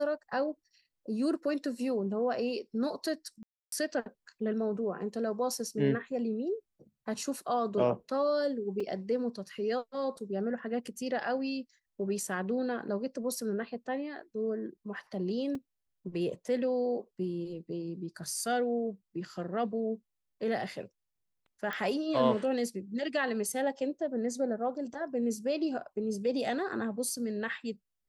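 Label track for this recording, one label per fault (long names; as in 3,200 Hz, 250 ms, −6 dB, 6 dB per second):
3.430000	3.720000	drop-out 293 ms
8.800000	8.800000	drop-out 3.8 ms
15.550000	15.550000	drop-out 2.7 ms
21.730000	21.730000	click −22 dBFS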